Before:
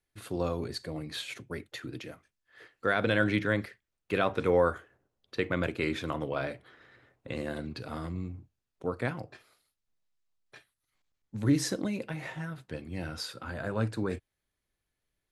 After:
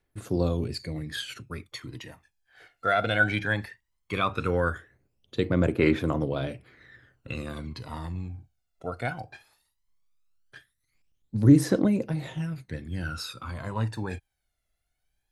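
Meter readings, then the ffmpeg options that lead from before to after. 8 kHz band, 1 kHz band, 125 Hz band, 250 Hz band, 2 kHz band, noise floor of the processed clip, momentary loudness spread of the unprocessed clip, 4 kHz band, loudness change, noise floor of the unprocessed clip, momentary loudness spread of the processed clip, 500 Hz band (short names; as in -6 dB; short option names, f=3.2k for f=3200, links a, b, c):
-0.5 dB, +3.5 dB, +7.0 dB, +6.0 dB, +4.0 dB, -79 dBFS, 15 LU, +2.5 dB, +4.5 dB, -85 dBFS, 17 LU, +1.0 dB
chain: -af "aphaser=in_gain=1:out_gain=1:delay=1.5:decay=0.69:speed=0.17:type=triangular"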